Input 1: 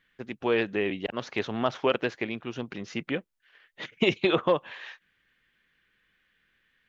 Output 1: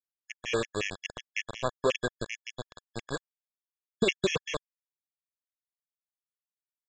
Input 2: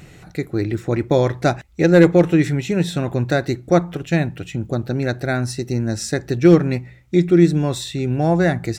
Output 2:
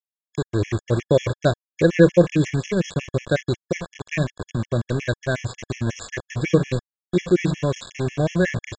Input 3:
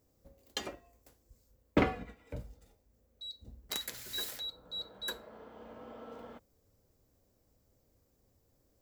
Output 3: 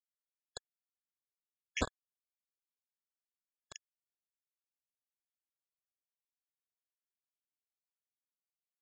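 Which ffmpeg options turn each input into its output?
-af "equalizer=f=100:t=o:w=0.33:g=4,equalizer=f=800:t=o:w=0.33:g=-10,equalizer=f=1.25k:t=o:w=0.33:g=-6,equalizer=f=2.5k:t=o:w=0.33:g=4,aresample=16000,aeval=exprs='val(0)*gte(abs(val(0)),0.0596)':c=same,aresample=44100,bandreject=f=4.8k:w=5.4,aecho=1:1:1.8:0.35,afftfilt=real='re*gt(sin(2*PI*5.5*pts/sr)*(1-2*mod(floor(b*sr/1024/1700),2)),0)':imag='im*gt(sin(2*PI*5.5*pts/sr)*(1-2*mod(floor(b*sr/1024/1700),2)),0)':win_size=1024:overlap=0.75"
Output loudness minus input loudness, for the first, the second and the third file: -4.0, -4.0, -3.5 LU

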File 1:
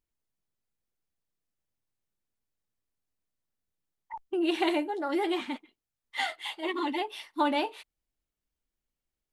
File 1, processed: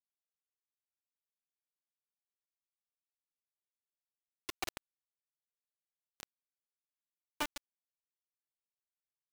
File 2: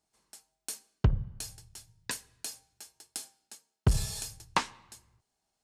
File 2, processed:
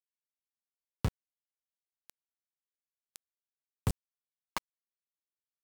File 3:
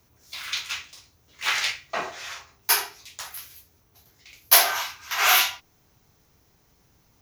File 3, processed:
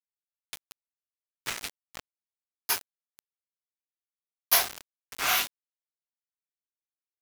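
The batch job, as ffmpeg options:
-af "aeval=exprs='val(0)*gte(abs(val(0)),0.112)':c=same,volume=-6.5dB"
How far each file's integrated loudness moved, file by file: -12.0, -4.5, -5.5 LU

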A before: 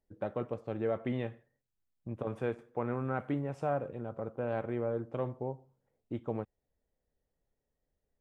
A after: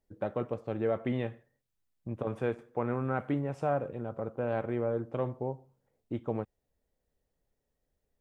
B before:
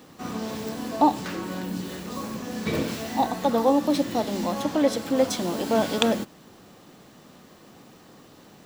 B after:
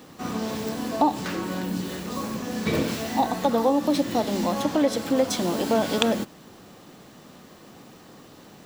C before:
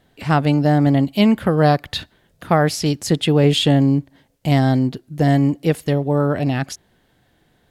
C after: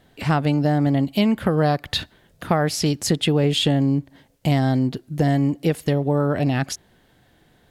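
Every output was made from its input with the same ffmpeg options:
-af "acompressor=threshold=-20dB:ratio=3,volume=2.5dB"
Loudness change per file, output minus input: +2.5, +0.5, -3.5 LU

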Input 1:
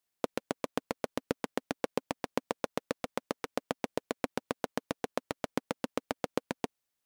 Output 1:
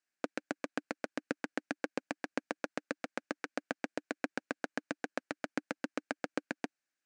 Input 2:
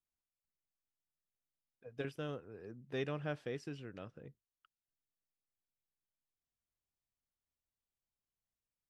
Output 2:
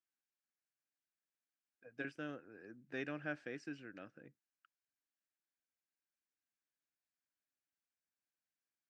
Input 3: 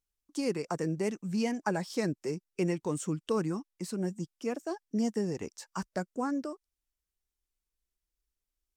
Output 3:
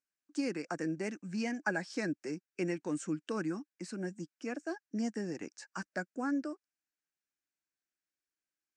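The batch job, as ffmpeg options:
-af "highpass=200,equalizer=f=300:t=q:w=4:g=6,equalizer=f=430:t=q:w=4:g=-6,equalizer=f=1k:t=q:w=4:g=-6,equalizer=f=1.6k:t=q:w=4:g=10,equalizer=f=2.4k:t=q:w=4:g=4,equalizer=f=3.4k:t=q:w=4:g=-6,lowpass=f=8.2k:w=0.5412,lowpass=f=8.2k:w=1.3066,volume=-3.5dB"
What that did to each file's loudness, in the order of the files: -3.0, -3.0, -4.0 LU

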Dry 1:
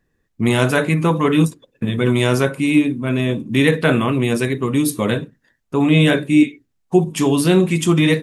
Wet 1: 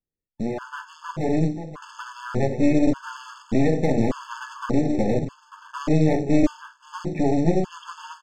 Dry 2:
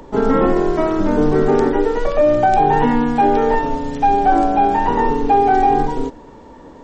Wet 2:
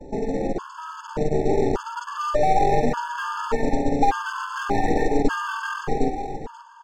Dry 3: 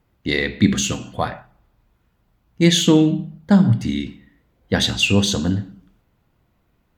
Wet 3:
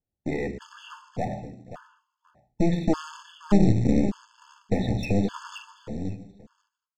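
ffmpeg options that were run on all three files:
-filter_complex "[0:a]lowpass=1.2k,agate=range=-24dB:threshold=-43dB:ratio=16:detection=peak,aemphasis=mode=reproduction:type=cd,bandreject=f=60:t=h:w=6,bandreject=f=120:t=h:w=6,bandreject=f=180:t=h:w=6,bandreject=f=240:t=h:w=6,bandreject=f=300:t=h:w=6,bandreject=f=360:t=h:w=6,bandreject=f=420:t=h:w=6,alimiter=limit=-14.5dB:level=0:latency=1:release=308,dynaudnorm=f=510:g=5:m=7dB,aresample=16000,acrusher=bits=6:mode=log:mix=0:aa=0.000001,aresample=44100,aeval=exprs='clip(val(0),-1,0.0398)':c=same,asplit=2[a][b];[b]aecho=0:1:529|1058:0.282|0.0451[c];[a][c]amix=inputs=2:normalize=0,afftfilt=real='re*gt(sin(2*PI*0.85*pts/sr)*(1-2*mod(floor(b*sr/1024/880),2)),0)':imag='im*gt(sin(2*PI*0.85*pts/sr)*(1-2*mod(floor(b*sr/1024/880),2)),0)':win_size=1024:overlap=0.75"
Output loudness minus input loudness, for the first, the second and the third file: -6.5, -8.5, -8.0 LU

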